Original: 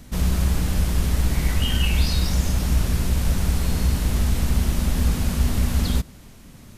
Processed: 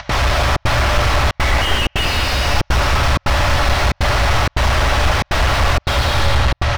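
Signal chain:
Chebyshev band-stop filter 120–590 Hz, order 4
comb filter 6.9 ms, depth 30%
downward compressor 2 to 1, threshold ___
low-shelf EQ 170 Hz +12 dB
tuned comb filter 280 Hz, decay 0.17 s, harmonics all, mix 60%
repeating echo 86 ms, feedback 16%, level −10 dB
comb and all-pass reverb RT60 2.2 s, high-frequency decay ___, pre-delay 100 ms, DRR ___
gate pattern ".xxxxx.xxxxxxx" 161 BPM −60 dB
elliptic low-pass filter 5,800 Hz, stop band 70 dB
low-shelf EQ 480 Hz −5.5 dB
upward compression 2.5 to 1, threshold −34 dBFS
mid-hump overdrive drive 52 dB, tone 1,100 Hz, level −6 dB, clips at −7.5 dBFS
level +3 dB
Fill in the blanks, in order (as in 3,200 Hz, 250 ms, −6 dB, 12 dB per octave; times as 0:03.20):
−23 dBFS, 0.85×, −1.5 dB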